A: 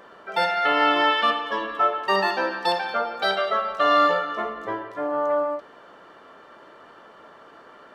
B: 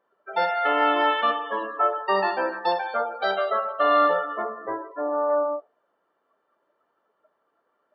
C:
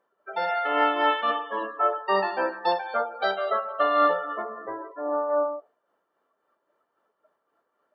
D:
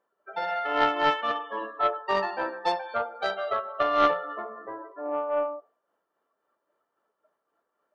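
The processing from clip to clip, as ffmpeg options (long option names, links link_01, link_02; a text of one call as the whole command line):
ffmpeg -i in.wav -af "afftdn=noise_reduction=24:noise_floor=-32,equalizer=frequency=640:width=0.34:gain=9,volume=-8.5dB" out.wav
ffmpeg -i in.wav -af "tremolo=f=3.7:d=0.45" out.wav
ffmpeg -i in.wav -af "bandreject=frequency=130:width_type=h:width=4,bandreject=frequency=260:width_type=h:width=4,bandreject=frequency=390:width_type=h:width=4,bandreject=frequency=520:width_type=h:width=4,bandreject=frequency=650:width_type=h:width=4,bandreject=frequency=780:width_type=h:width=4,bandreject=frequency=910:width_type=h:width=4,bandreject=frequency=1040:width_type=h:width=4,bandreject=frequency=1170:width_type=h:width=4,bandreject=frequency=1300:width_type=h:width=4,bandreject=frequency=1430:width_type=h:width=4,bandreject=frequency=1560:width_type=h:width=4,bandreject=frequency=1690:width_type=h:width=4,bandreject=frequency=1820:width_type=h:width=4,bandreject=frequency=1950:width_type=h:width=4,bandreject=frequency=2080:width_type=h:width=4,bandreject=frequency=2210:width_type=h:width=4,bandreject=frequency=2340:width_type=h:width=4,bandreject=frequency=2470:width_type=h:width=4,bandreject=frequency=2600:width_type=h:width=4,bandreject=frequency=2730:width_type=h:width=4,bandreject=frequency=2860:width_type=h:width=4,bandreject=frequency=2990:width_type=h:width=4,bandreject=frequency=3120:width_type=h:width=4,bandreject=frequency=3250:width_type=h:width=4,bandreject=frequency=3380:width_type=h:width=4,bandreject=frequency=3510:width_type=h:width=4,bandreject=frequency=3640:width_type=h:width=4,bandreject=frequency=3770:width_type=h:width=4,bandreject=frequency=3900:width_type=h:width=4,bandreject=frequency=4030:width_type=h:width=4,bandreject=frequency=4160:width_type=h:width=4,bandreject=frequency=4290:width_type=h:width=4,bandreject=frequency=4420:width_type=h:width=4,bandreject=frequency=4550:width_type=h:width=4,aeval=exprs='0.335*(cos(1*acos(clip(val(0)/0.335,-1,1)))-cos(1*PI/2))+0.0596*(cos(3*acos(clip(val(0)/0.335,-1,1)))-cos(3*PI/2))':channel_layout=same,volume=3dB" out.wav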